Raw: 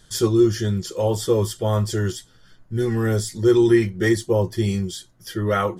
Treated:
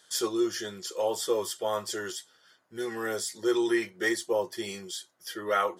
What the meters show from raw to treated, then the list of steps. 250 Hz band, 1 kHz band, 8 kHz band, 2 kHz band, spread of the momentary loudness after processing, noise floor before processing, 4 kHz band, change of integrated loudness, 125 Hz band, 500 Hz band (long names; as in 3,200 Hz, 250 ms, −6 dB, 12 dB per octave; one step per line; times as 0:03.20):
−12.0 dB, −3.5 dB, −3.0 dB, −3.0 dB, 11 LU, −54 dBFS, −3.0 dB, −9.5 dB, −29.5 dB, −8.5 dB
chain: high-pass filter 530 Hz 12 dB per octave
level −3 dB